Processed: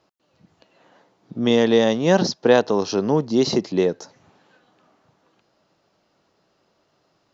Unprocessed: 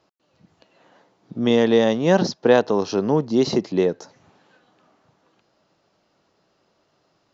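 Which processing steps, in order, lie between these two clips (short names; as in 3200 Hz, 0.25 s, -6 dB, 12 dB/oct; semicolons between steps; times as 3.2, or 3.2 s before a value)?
dynamic EQ 5500 Hz, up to +4 dB, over -45 dBFS, Q 0.79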